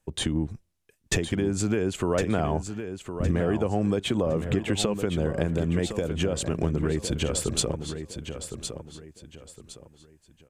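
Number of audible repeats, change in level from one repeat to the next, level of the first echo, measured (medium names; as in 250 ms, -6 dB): 3, -10.5 dB, -9.0 dB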